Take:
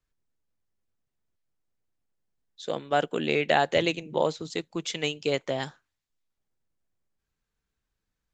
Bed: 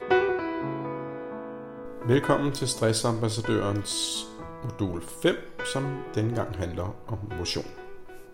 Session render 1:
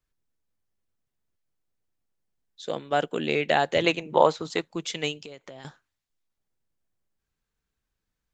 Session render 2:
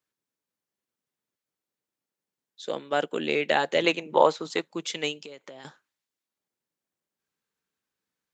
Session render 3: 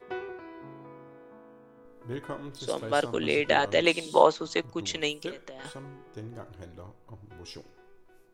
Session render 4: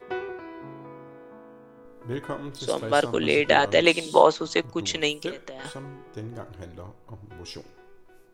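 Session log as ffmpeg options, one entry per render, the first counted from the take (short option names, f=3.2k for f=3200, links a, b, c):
-filter_complex "[0:a]asettb=1/sr,asplit=3[a][b][c];[a]atrim=end=3.844[d];[b]atrim=start=3.84:end=4.72,asetpts=PTS-STARTPTS,afade=t=in:d=0.004:c=qsin,afade=t=out:st=0.876:d=0.004:c=qsin,equalizer=f=1.1k:t=o:w=2.1:g=11[e];[c]atrim=start=4.716[f];[d][e]acrossfade=d=0.004:c1=hsin:c2=qsin[g];[g][f]acrossfade=d=0.004:c1=qsin:c2=hsin,asettb=1/sr,asplit=3[h][i][j];[h]atrim=end=5.244[k];[i]atrim=start=5.24:end=5.65,asetpts=PTS-STARTPTS,afade=t=in:d=0.004:c=qsin,afade=t=out:st=0.406:d=0.004:c=qsin,acompressor=threshold=-40dB:ratio=6:attack=3.2:release=140:knee=1:detection=peak[l];[j]atrim=start=5.646[m];[k][l]acrossfade=d=0.004:c1=hsin:c2=qsin[n];[n][m]acrossfade=d=0.004:c1=qsin:c2=hsin"
-af "highpass=210,bandreject=f=700:w=14"
-filter_complex "[1:a]volume=-14.5dB[a];[0:a][a]amix=inputs=2:normalize=0"
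-af "volume=4.5dB,alimiter=limit=-3dB:level=0:latency=1"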